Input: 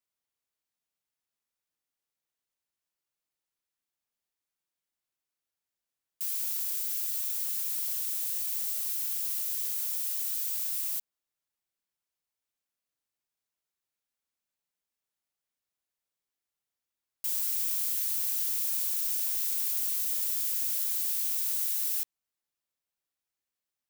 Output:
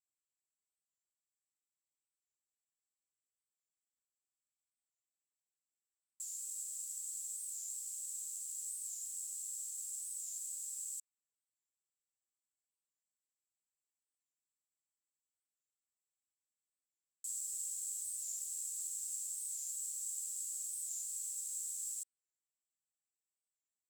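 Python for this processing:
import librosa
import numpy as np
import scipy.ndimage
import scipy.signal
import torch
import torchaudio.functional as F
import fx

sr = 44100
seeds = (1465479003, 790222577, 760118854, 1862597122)

y = fx.bandpass_q(x, sr, hz=7700.0, q=13.0)
y = fx.record_warp(y, sr, rpm=45.0, depth_cents=100.0)
y = y * librosa.db_to_amplitude(7.0)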